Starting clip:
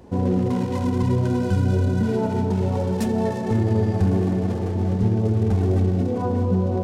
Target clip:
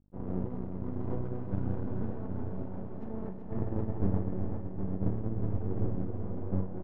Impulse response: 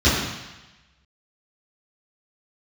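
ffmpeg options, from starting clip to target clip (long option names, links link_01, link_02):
-filter_complex "[0:a]aeval=exprs='val(0)+0.0316*(sin(2*PI*50*n/s)+sin(2*PI*2*50*n/s)/2+sin(2*PI*3*50*n/s)/3+sin(2*PI*4*50*n/s)/4+sin(2*PI*5*50*n/s)/5)':channel_layout=same,equalizer=frequency=160:width_type=o:width=2.2:gain=7,agate=range=-33dB:threshold=-5dB:ratio=3:detection=peak,asettb=1/sr,asplit=3[link_01][link_02][link_03];[link_01]atrim=end=1.014[link_04];[link_02]atrim=start=1.01:end=3.08,asetpts=PTS-STARTPTS,afade=type=in:duration=0.004:curve=qsin,afade=type=out:start_time=2.066:duration=0.004:curve=qsin,highpass=93[link_05];[link_03]atrim=start=3.076[link_06];[link_04][link_05]acrossfade=duration=0.004:curve1=hsin:curve2=qsin[link_07];[link_07][link_06]acrossfade=duration=0.004:curve1=qsin:curve2=hsin,aeval=exprs='max(val(0),0)':channel_layout=same,lowpass=1500,aecho=1:1:380|768:0.473|0.398,volume=-3.5dB"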